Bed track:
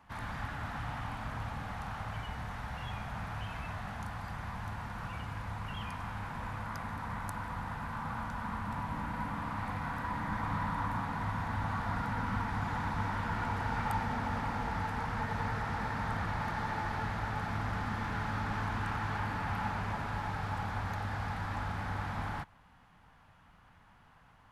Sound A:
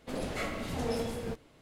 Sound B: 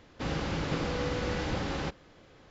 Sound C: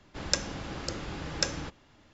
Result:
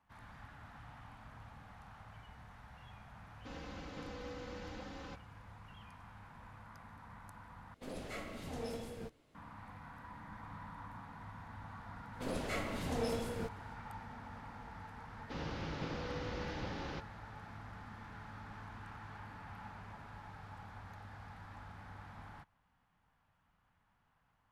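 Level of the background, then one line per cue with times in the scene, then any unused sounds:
bed track −15 dB
0:03.25: mix in B −17 dB + comb filter 3.9 ms
0:07.74: overwrite with A −9.5 dB
0:12.13: mix in A −3.5 dB
0:15.10: mix in B −10 dB + Butterworth low-pass 6,300 Hz
not used: C

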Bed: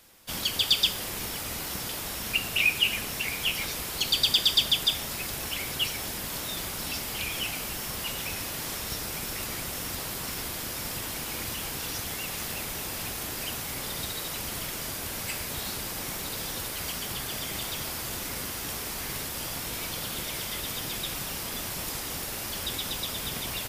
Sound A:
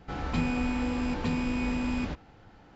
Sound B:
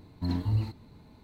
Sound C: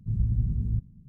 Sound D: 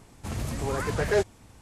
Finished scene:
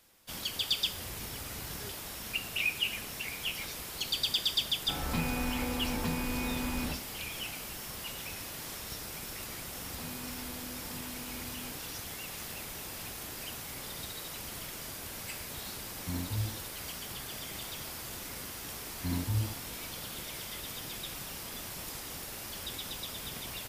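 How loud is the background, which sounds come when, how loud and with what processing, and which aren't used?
bed −7.5 dB
0:00.69: mix in D −2.5 dB + guitar amp tone stack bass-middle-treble 6-0-2
0:04.80: mix in A −2 dB + mains-hum notches 50/100/150/200/250/300/350/400/450/500 Hz
0:09.66: mix in A −17 dB + high-pass filter 44 Hz
0:15.85: mix in B −7 dB
0:18.82: mix in B −4 dB
not used: C

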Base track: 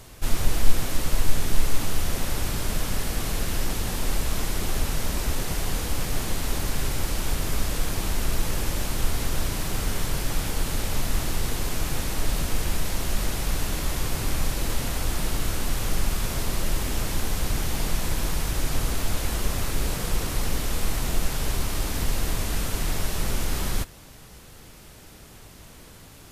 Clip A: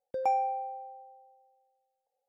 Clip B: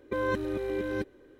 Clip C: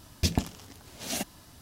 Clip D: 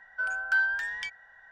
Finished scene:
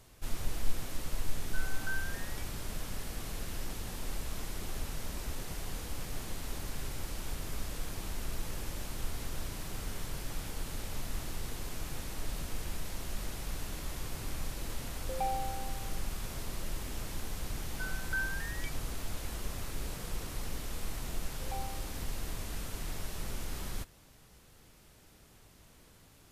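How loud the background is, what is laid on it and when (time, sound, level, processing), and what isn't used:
base track −12.5 dB
0:01.35: mix in D −9 dB + parametric band 2,700 Hz −12.5 dB 1.3 octaves
0:14.95: mix in A −7 dB
0:17.61: mix in D −9.5 dB + spectral dynamics exaggerated over time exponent 1.5
0:21.26: mix in A −15 dB + adaptive Wiener filter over 41 samples
not used: B, C

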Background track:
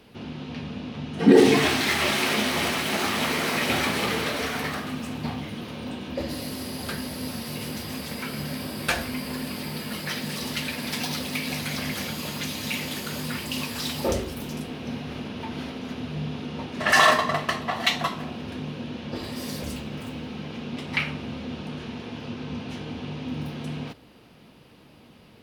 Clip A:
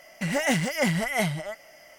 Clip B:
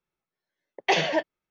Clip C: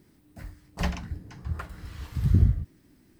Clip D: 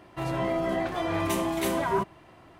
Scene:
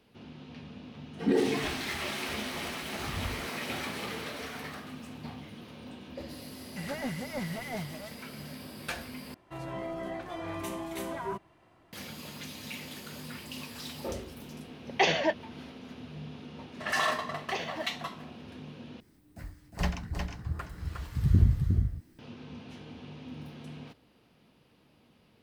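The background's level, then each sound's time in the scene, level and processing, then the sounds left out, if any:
background track −11.5 dB
0:00.83: mix in C −18 dB
0:06.55: mix in A −10.5 dB + linear delta modulator 64 kbit/s, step −43.5 dBFS
0:09.34: overwrite with D −9.5 dB
0:14.11: mix in B −2.5 dB
0:16.63: mix in B −12.5 dB + mu-law and A-law mismatch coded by A
0:19.00: overwrite with C −2 dB + single-tap delay 359 ms −5 dB

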